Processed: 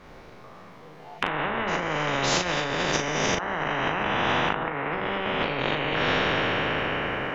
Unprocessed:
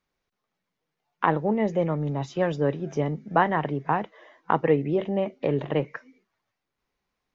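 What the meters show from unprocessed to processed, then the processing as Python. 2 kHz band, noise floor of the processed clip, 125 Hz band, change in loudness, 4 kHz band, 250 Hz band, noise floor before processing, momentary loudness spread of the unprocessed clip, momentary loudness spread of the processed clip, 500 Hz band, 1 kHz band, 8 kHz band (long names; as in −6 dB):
+9.5 dB, −46 dBFS, −4.0 dB, +0.5 dB, +18.0 dB, −3.0 dB, −83 dBFS, 6 LU, 5 LU, −2.5 dB, +1.5 dB, can't be measured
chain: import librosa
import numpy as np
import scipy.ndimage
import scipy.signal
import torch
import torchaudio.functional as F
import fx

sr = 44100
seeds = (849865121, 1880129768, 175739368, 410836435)

y = fx.spec_trails(x, sr, decay_s=2.89)
y = fx.lowpass(y, sr, hz=1500.0, slope=6)
y = fx.peak_eq(y, sr, hz=650.0, db=3.0, octaves=1.0)
y = fx.over_compress(y, sr, threshold_db=-26.0, ratio=-0.5)
y = fx.doubler(y, sr, ms=39.0, db=-7.0)
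y = fx.spectral_comp(y, sr, ratio=4.0)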